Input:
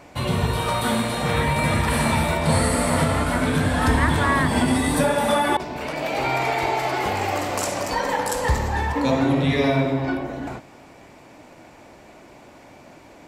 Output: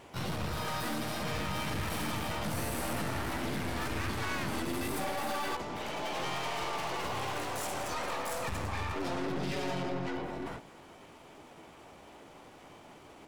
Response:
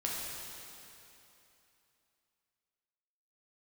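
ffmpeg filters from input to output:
-filter_complex "[0:a]aeval=exprs='(tanh(25.1*val(0)+0.4)-tanh(0.4))/25.1':c=same,asplit=2[a][b];[b]asetrate=58866,aresample=44100,atempo=0.749154,volume=0dB[c];[a][c]amix=inputs=2:normalize=0,volume=-8dB"

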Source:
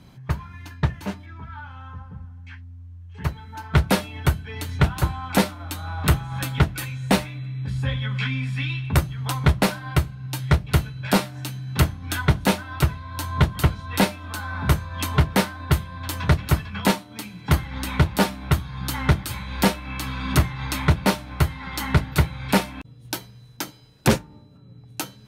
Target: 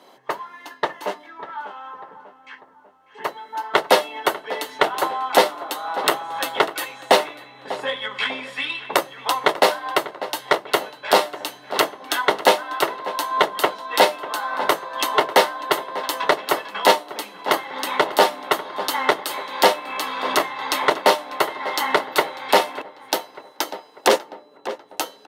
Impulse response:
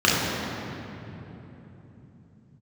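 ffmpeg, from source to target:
-filter_complex "[0:a]highpass=f=420:w=0.5412,highpass=f=420:w=1.3066,equalizer=f=1.5k:t=o:w=0.43:g=-7,bandreject=f=2.4k:w=5.8,asplit=2[a][b];[b]adynamicsmooth=sensitivity=2:basefreq=3.1k,volume=3dB[c];[a][c]amix=inputs=2:normalize=0,asplit=2[d][e];[e]adelay=595,lowpass=f=2.3k:p=1,volume=-14.5dB,asplit=2[f][g];[g]adelay=595,lowpass=f=2.3k:p=1,volume=0.52,asplit=2[h][i];[i]adelay=595,lowpass=f=2.3k:p=1,volume=0.52,asplit=2[j][k];[k]adelay=595,lowpass=f=2.3k:p=1,volume=0.52,asplit=2[l][m];[m]adelay=595,lowpass=f=2.3k:p=1,volume=0.52[n];[d][f][h][j][l][n]amix=inputs=6:normalize=0,alimiter=level_in=4.5dB:limit=-1dB:release=50:level=0:latency=1,volume=-1dB"

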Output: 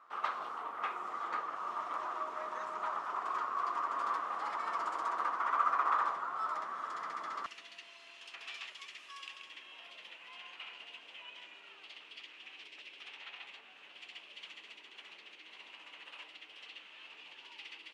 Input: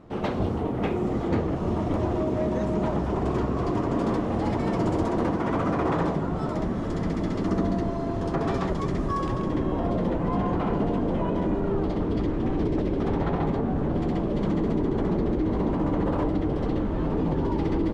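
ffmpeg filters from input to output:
-af "asetnsamples=n=441:p=0,asendcmd='7.46 highpass f 2700',highpass=f=1.2k:t=q:w=5.5,volume=-8.5dB"

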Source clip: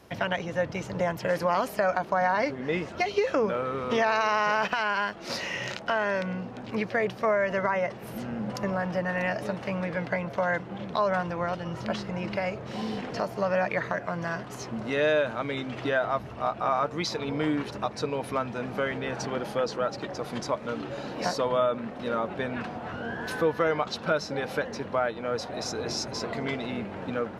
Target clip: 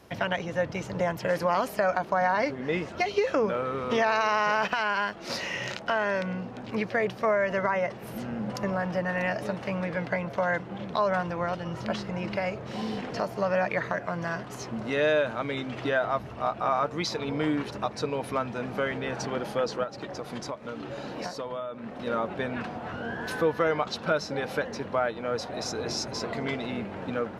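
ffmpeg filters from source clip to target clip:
-filter_complex "[0:a]asettb=1/sr,asplit=3[a][b][c];[a]atrim=end=19.834[d];[b]atrim=start=19.83:end=22.07,asetpts=PTS-STARTPTS,afade=t=in:d=0.004:c=qsin,afade=t=out:st=2.236:d=0.004:c=qsin,acompressor=threshold=-32dB:ratio=6[e];[c]atrim=start=22.066[f];[d][e]acrossfade=d=0.004:c1=hsin:c2=qsin[g];[g][f]acrossfade=d=0.004:c1=qsin:c2=hsin"

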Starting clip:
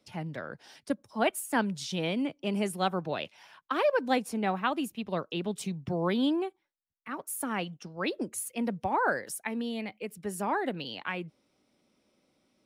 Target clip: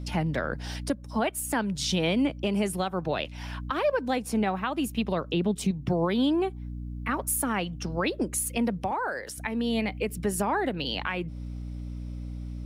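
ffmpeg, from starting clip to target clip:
-filter_complex "[0:a]asettb=1/sr,asplit=3[a][b][c];[a]atrim=end=5.294[d];[b]atrim=start=5.29:end=5.71,asetpts=PTS-STARTPTS,afade=t=in:d=0.004:c=qsin,afade=t=out:st=0.416:d=0.004:c=qsin,lowshelf=f=440:g=9[e];[c]atrim=start=5.706[f];[d][e]acrossfade=d=0.004:c1=hsin:c2=qsin[g];[g][f]acrossfade=d=0.004:c1=qsin:c2=hsin,aeval=exprs='val(0)+0.00447*(sin(2*PI*60*n/s)+sin(2*PI*2*60*n/s)/2+sin(2*PI*3*60*n/s)/3+sin(2*PI*4*60*n/s)/4+sin(2*PI*5*60*n/s)/5)':c=same,asplit=2[h][i];[i]acompressor=threshold=-39dB:ratio=6,volume=3dB[j];[h][j]amix=inputs=2:normalize=0,alimiter=limit=-22dB:level=0:latency=1:release=345,asettb=1/sr,asplit=3[k][l][m];[k]atrim=end=8.914[n];[l]atrim=start=8.91:end=9.38,asetpts=PTS-STARTPTS,afade=t=in:d=0.004:c=qsin,afade=t=out:st=0.466:d=0.004:c=qsin,acrossover=split=320|4600[o][p][q];[o]acompressor=threshold=-57dB:ratio=4[r];[p]acompressor=threshold=-32dB:ratio=4[s];[q]acompressor=threshold=-49dB:ratio=4[t];[r][s][t]amix=inputs=3:normalize=0[u];[m]atrim=start=9.376[v];[n][u]acrossfade=d=0.004:c1=hsin:c2=qsin[w];[w][v]acrossfade=d=0.004:c1=qsin:c2=hsin,volume=5dB"

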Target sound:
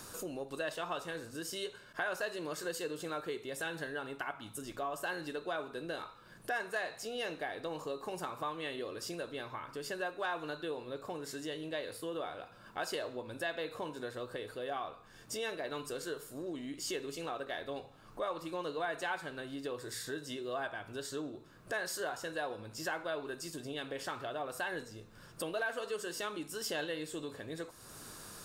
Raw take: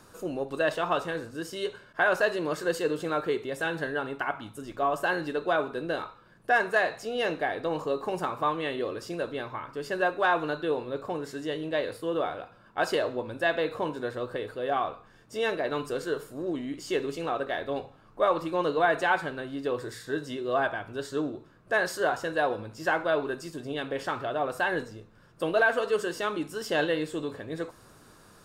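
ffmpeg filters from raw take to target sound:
-af "acompressor=threshold=-50dB:ratio=2,highshelf=f=3.5k:g=11,volume=2dB"

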